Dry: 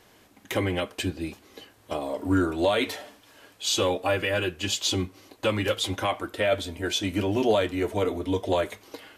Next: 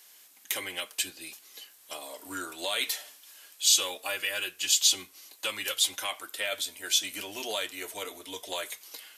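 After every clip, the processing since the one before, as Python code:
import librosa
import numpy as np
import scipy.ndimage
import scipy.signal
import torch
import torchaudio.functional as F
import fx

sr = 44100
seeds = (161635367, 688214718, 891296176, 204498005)

y = np.diff(x, prepend=0.0)
y = F.gain(torch.from_numpy(y), 8.0).numpy()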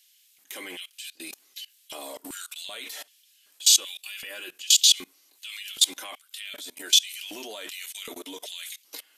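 y = fx.filter_lfo_highpass(x, sr, shape='square', hz=1.3, low_hz=250.0, high_hz=2900.0, q=1.7)
y = fx.level_steps(y, sr, step_db=23)
y = F.gain(torch.from_numpy(y), 7.5).numpy()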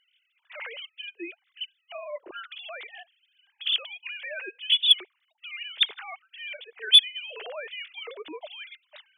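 y = fx.sine_speech(x, sr)
y = 10.0 ** (-5.0 / 20.0) * np.tanh(y / 10.0 ** (-5.0 / 20.0))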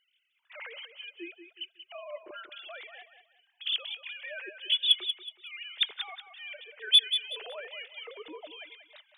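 y = fx.echo_feedback(x, sr, ms=185, feedback_pct=30, wet_db=-9.5)
y = F.gain(torch.from_numpy(y), -5.0).numpy()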